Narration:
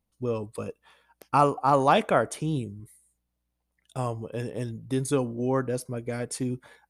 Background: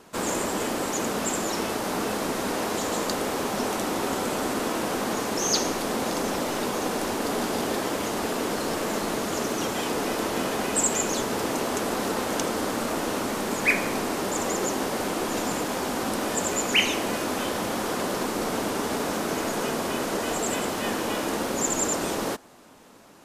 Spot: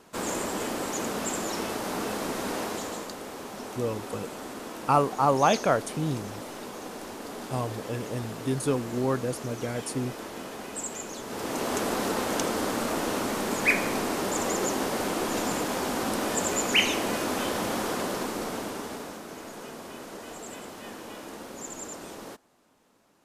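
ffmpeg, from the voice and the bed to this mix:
-filter_complex "[0:a]adelay=3550,volume=-1dB[a];[1:a]volume=7dB,afade=t=out:st=2.58:d=0.54:silence=0.398107,afade=t=in:st=11.22:d=0.53:silence=0.298538,afade=t=out:st=17.75:d=1.46:silence=0.237137[b];[a][b]amix=inputs=2:normalize=0"

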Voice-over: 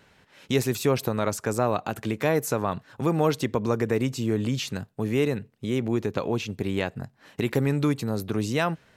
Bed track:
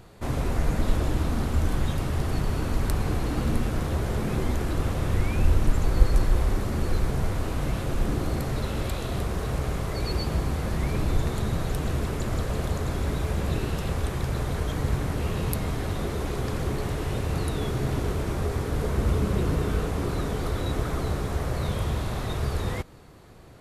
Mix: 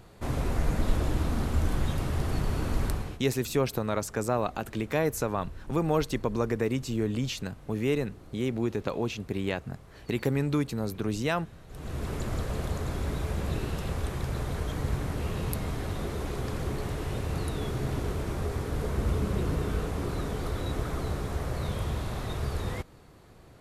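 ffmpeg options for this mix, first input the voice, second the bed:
-filter_complex "[0:a]adelay=2700,volume=-3.5dB[a];[1:a]volume=16dB,afade=t=out:st=2.84:d=0.35:silence=0.1,afade=t=in:st=11.67:d=0.46:silence=0.11885[b];[a][b]amix=inputs=2:normalize=0"

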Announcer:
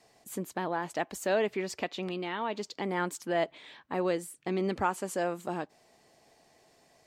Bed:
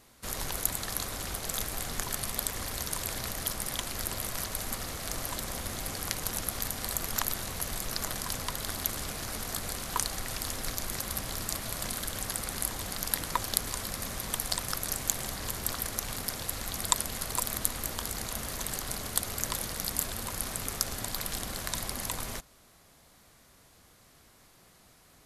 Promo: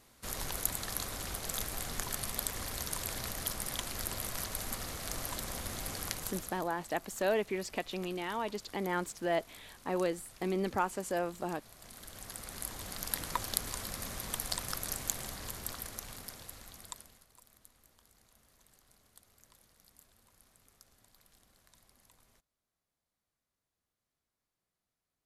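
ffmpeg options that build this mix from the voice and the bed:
-filter_complex "[0:a]adelay=5950,volume=-2.5dB[a];[1:a]volume=12.5dB,afade=t=out:st=6.02:d=0.64:silence=0.141254,afade=t=in:st=11.78:d=1.47:silence=0.158489,afade=t=out:st=14.88:d=2.38:silence=0.0501187[b];[a][b]amix=inputs=2:normalize=0"

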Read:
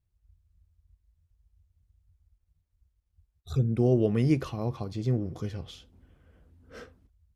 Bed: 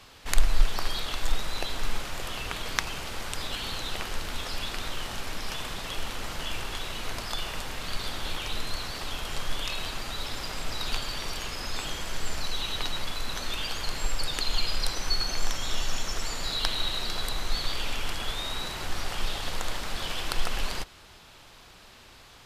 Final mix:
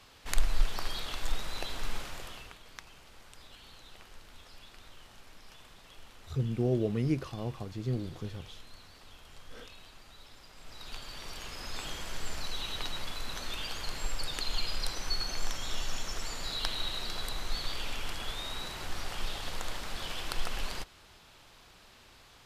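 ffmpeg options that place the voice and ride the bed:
-filter_complex "[0:a]adelay=2800,volume=-5.5dB[a];[1:a]volume=8.5dB,afade=t=out:st=2.01:d=0.57:silence=0.199526,afade=t=in:st=10.54:d=1.34:silence=0.199526[b];[a][b]amix=inputs=2:normalize=0"

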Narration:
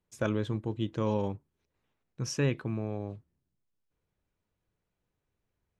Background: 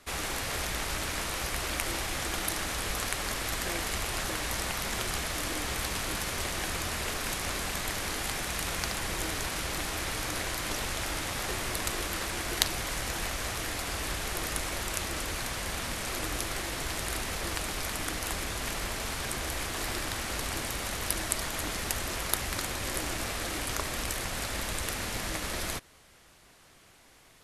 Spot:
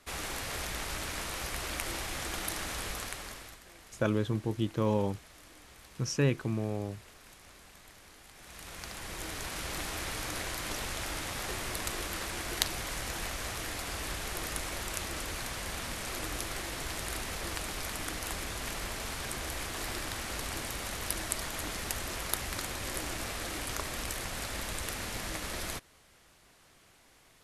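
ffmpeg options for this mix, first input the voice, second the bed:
-filter_complex "[0:a]adelay=3800,volume=1dB[a];[1:a]volume=14dB,afade=t=out:st=2.8:d=0.8:silence=0.133352,afade=t=in:st=8.33:d=1.45:silence=0.125893[b];[a][b]amix=inputs=2:normalize=0"

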